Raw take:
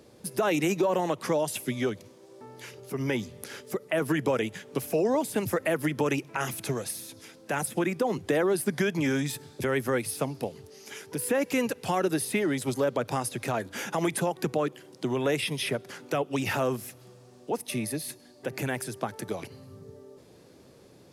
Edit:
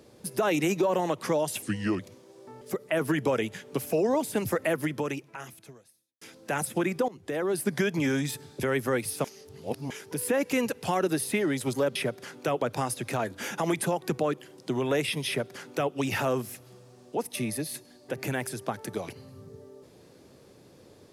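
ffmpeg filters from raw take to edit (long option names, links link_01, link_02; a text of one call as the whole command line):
ffmpeg -i in.wav -filter_complex "[0:a]asplit=10[link_01][link_02][link_03][link_04][link_05][link_06][link_07][link_08][link_09][link_10];[link_01]atrim=end=1.624[link_11];[link_02]atrim=start=1.62:end=1.93,asetpts=PTS-STARTPTS,asetrate=36603,aresample=44100,atrim=end_sample=16471,asetpts=PTS-STARTPTS[link_12];[link_03]atrim=start=1.926:end=2.552[link_13];[link_04]atrim=start=3.618:end=7.22,asetpts=PTS-STARTPTS,afade=type=out:start_time=2.102:duration=1.5:curve=qua[link_14];[link_05]atrim=start=7.22:end=8.09,asetpts=PTS-STARTPTS,afade=type=in:duration=0.004:curve=hsin,afade=type=out:start_time=0.866:duration=0.004:curve=hsin:silence=0.0841395[link_15];[link_06]atrim=start=8.09:end=10.252,asetpts=PTS-STARTPTS,afade=type=in:duration=0.59:silence=0.0841395[link_16];[link_07]atrim=start=10.248:end=10.912,asetpts=PTS-STARTPTS,areverse[link_17];[link_08]atrim=start=10.908:end=12.962[link_18];[link_09]atrim=start=15.618:end=16.282[link_19];[link_10]atrim=start=12.958[link_20];[link_11][link_12]acrossfade=duration=0.004:curve1=hsin:curve2=hsin[link_21];[link_21][link_13]acrossfade=duration=0.004:curve1=hsin:curve2=hsin[link_22];[link_14][link_15][link_16]concat=n=3:v=0:a=1[link_23];[link_22][link_23]acrossfade=duration=0.004:curve1=hsin:curve2=hsin[link_24];[link_24][link_17]acrossfade=duration=0.004:curve1=hsin:curve2=hsin[link_25];[link_25][link_18]acrossfade=duration=0.004:curve1=hsin:curve2=hsin[link_26];[link_26][link_19]acrossfade=duration=0.004:curve1=hsin:curve2=hsin[link_27];[link_27][link_20]acrossfade=duration=0.004:curve1=hsin:curve2=hsin" out.wav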